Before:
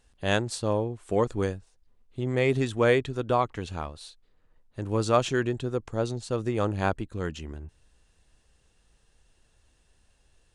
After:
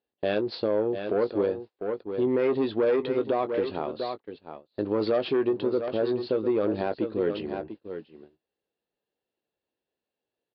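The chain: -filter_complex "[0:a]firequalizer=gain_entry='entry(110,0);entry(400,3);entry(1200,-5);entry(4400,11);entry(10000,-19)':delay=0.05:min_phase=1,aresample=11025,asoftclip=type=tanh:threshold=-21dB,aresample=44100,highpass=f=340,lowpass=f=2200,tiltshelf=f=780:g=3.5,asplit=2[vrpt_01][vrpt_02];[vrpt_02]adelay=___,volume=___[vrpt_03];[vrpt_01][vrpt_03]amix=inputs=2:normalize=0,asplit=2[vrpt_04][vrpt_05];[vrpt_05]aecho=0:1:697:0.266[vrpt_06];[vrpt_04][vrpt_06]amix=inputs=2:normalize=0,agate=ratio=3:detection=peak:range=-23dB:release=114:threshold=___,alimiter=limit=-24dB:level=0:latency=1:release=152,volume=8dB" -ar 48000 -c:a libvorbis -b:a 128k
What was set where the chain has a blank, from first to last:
19, -11.5dB, -50dB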